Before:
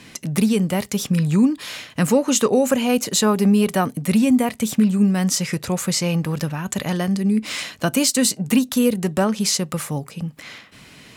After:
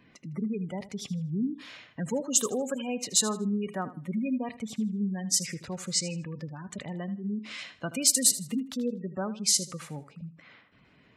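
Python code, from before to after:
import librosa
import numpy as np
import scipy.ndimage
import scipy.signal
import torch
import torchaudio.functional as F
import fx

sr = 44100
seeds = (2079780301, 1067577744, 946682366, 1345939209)

y = fx.spec_gate(x, sr, threshold_db=-20, keep='strong')
y = F.preemphasis(torch.from_numpy(y), 0.8).numpy()
y = fx.env_lowpass(y, sr, base_hz=1400.0, full_db=-19.0)
y = fx.wow_flutter(y, sr, seeds[0], rate_hz=2.1, depth_cents=20.0)
y = np.clip(10.0 ** (10.0 / 20.0) * y, -1.0, 1.0) / 10.0 ** (10.0 / 20.0)
y = fx.echo_feedback(y, sr, ms=79, feedback_pct=27, wet_db=-15.0)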